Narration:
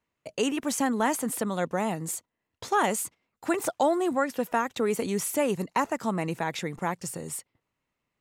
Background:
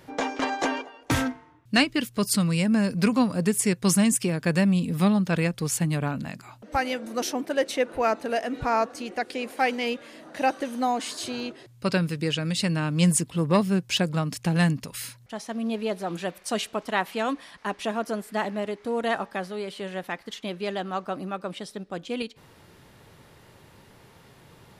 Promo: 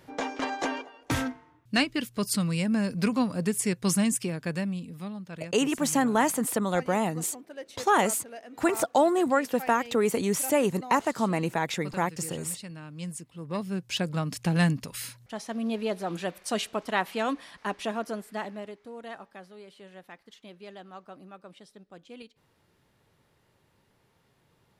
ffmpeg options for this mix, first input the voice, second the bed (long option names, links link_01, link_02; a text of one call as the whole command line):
ffmpeg -i stem1.wav -i stem2.wav -filter_complex "[0:a]adelay=5150,volume=2dB[link_01];[1:a]volume=11dB,afade=type=out:start_time=4.08:duration=0.93:silence=0.237137,afade=type=in:start_time=13.37:duration=1.06:silence=0.177828,afade=type=out:start_time=17.67:duration=1.25:silence=0.211349[link_02];[link_01][link_02]amix=inputs=2:normalize=0" out.wav